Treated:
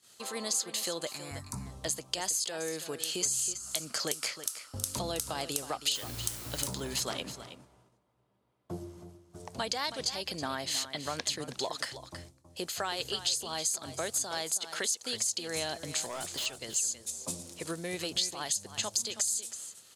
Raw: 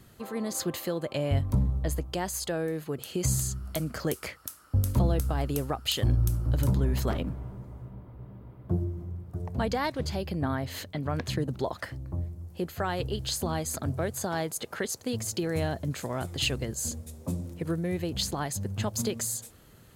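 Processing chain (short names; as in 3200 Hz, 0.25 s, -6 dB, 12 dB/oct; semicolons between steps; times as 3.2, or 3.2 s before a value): weighting filter ITU-R 468; gate -53 dBFS, range -18 dB; bell 1800 Hz -6.5 dB 1.4 oct; compressor 6:1, threshold -32 dBFS, peak gain reduction 14 dB; 1.09–1.66 fixed phaser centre 1300 Hz, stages 4; 5.95–6.68 requantised 8-bit, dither triangular; 16.05–16.46 hard clip -35.5 dBFS, distortion -20 dB; echo 0.322 s -12 dB; gain +3 dB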